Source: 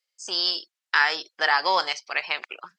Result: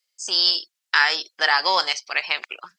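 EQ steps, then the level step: high shelf 2700 Hz +8 dB; 0.0 dB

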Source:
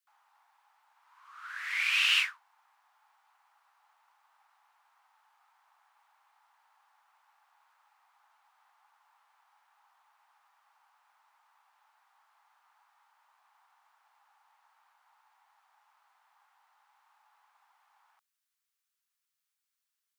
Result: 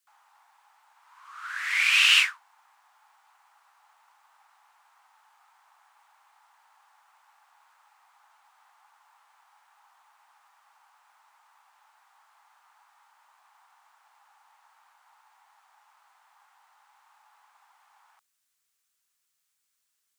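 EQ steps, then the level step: bell 7800 Hz +4.5 dB 0.86 oct; +6.5 dB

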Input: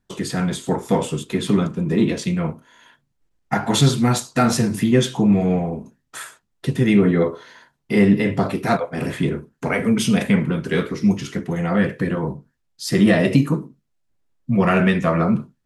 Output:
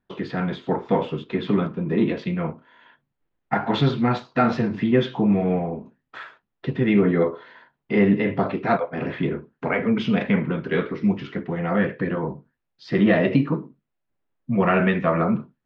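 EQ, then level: Bessel low-pass 2400 Hz, order 6; low shelf 160 Hz -9.5 dB; 0.0 dB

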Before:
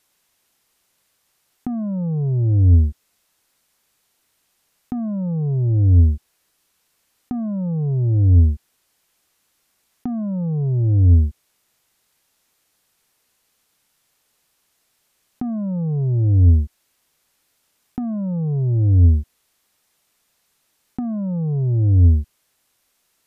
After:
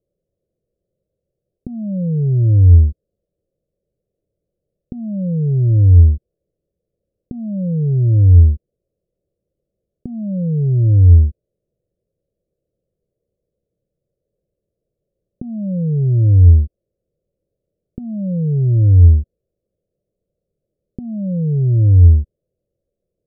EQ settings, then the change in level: elliptic low-pass 560 Hz, stop band 40 dB; bell 260 Hz -14.5 dB 0.44 oct; +6.0 dB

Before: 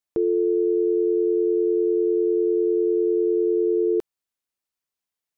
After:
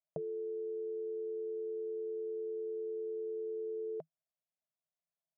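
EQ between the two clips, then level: double band-pass 320 Hz, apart 2 oct; +3.5 dB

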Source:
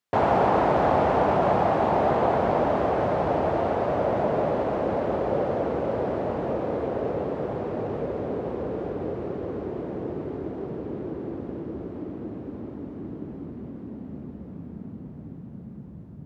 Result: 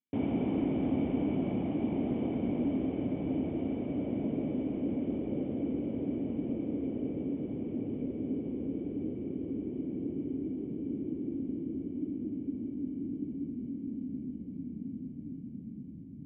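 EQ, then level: vocal tract filter i; air absorption 86 m; +4.0 dB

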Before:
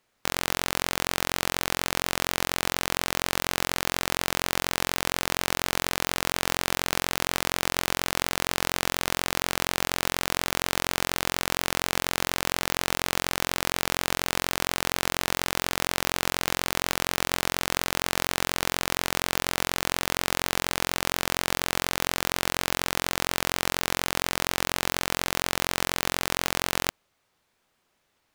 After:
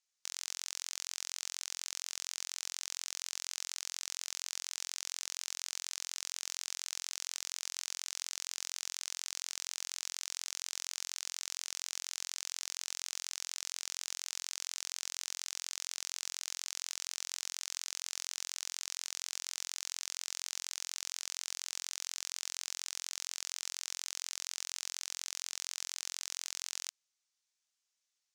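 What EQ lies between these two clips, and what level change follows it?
band-pass 6300 Hz, Q 2.1; -3.5 dB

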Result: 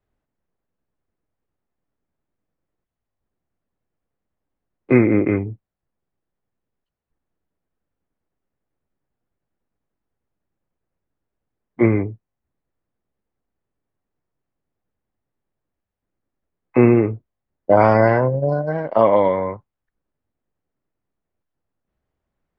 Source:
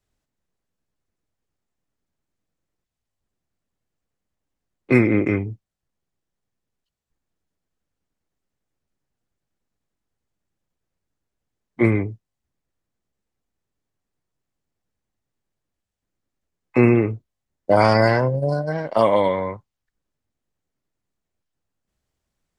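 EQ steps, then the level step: dynamic EQ 4400 Hz, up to -6 dB, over -48 dBFS, Q 4.8; tone controls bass -3 dB, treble -12 dB; high shelf 2400 Hz -11 dB; +3.5 dB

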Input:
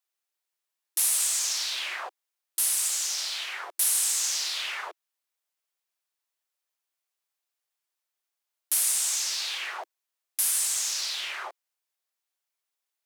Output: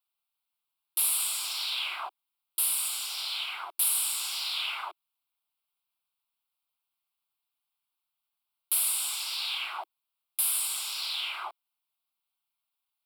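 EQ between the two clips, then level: fixed phaser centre 1800 Hz, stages 6; +2.0 dB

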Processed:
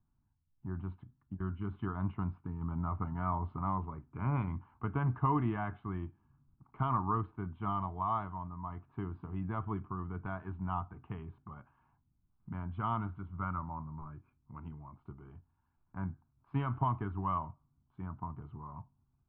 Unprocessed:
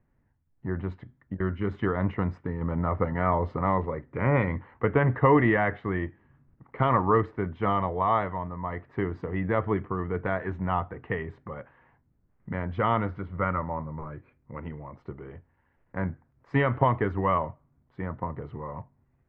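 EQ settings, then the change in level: air absorption 370 m; fixed phaser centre 1900 Hz, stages 6; -6.0 dB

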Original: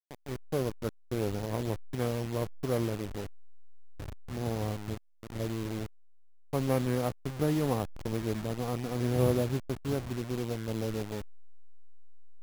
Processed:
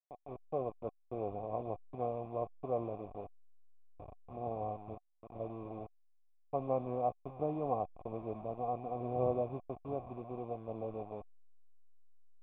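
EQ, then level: vocal tract filter a; low shelf 430 Hz -3.5 dB; band shelf 1200 Hz -13.5 dB; +18.0 dB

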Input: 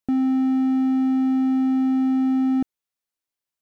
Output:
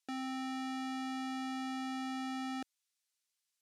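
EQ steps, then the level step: air absorption 65 m; differentiator; bell 130 Hz -11.5 dB 1.6 oct; +12.0 dB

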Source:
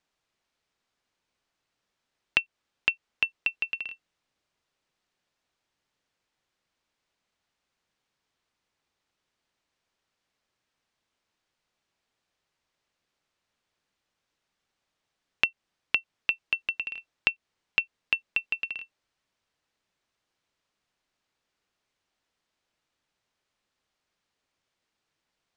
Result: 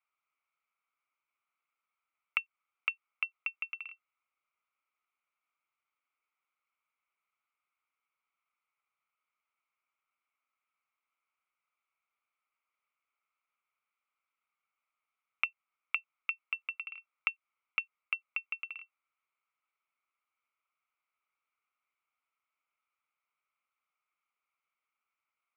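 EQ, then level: double band-pass 1700 Hz, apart 0.81 oct; air absorption 290 m; +4.0 dB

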